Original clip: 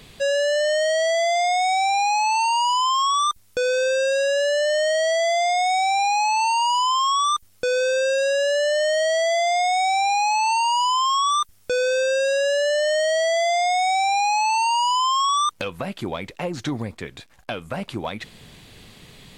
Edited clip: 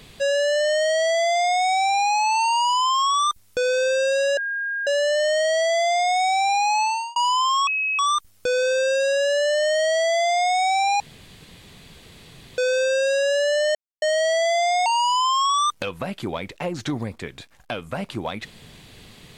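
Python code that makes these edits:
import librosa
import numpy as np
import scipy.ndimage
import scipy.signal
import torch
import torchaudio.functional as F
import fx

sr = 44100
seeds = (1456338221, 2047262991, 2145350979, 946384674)

y = fx.edit(x, sr, fx.insert_tone(at_s=4.37, length_s=0.5, hz=1620.0, db=-23.5),
    fx.fade_out_span(start_s=6.32, length_s=0.34),
    fx.insert_tone(at_s=7.17, length_s=0.32, hz=2560.0, db=-20.5),
    fx.room_tone_fill(start_s=10.18, length_s=1.58),
    fx.insert_silence(at_s=12.93, length_s=0.27),
    fx.cut(start_s=13.77, length_s=0.88), tone=tone)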